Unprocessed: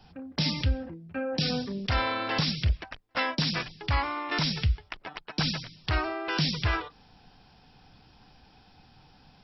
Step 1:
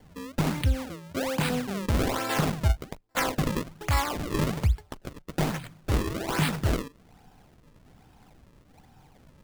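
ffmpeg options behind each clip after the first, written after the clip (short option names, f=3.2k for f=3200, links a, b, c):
-filter_complex "[0:a]acrossover=split=1100[a][b];[b]adynamicsmooth=sensitivity=4.5:basefreq=2.8k[c];[a][c]amix=inputs=2:normalize=0,acrusher=samples=34:mix=1:aa=0.000001:lfo=1:lforange=54.4:lforate=1.2,volume=2dB"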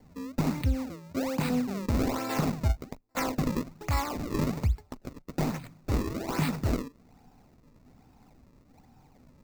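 -af "equalizer=f=250:t=o:w=0.33:g=7,equalizer=f=1.6k:t=o:w=0.33:g=-6,equalizer=f=3.15k:t=o:w=0.33:g=-10,equalizer=f=10k:t=o:w=0.33:g=-8,volume=-3dB"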